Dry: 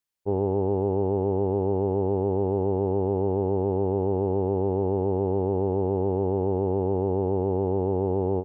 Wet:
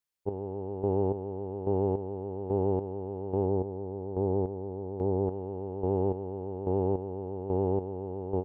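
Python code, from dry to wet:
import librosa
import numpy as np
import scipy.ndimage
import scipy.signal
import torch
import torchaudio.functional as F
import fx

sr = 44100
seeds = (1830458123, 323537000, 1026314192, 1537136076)

y = fx.lowpass(x, sr, hz=fx.line((3.45, 1100.0), (5.26, 1000.0)), slope=6, at=(3.45, 5.26), fade=0.02)
y = fx.chopper(y, sr, hz=1.2, depth_pct=65, duty_pct=35)
y = F.gain(torch.from_numpy(y), -2.5).numpy()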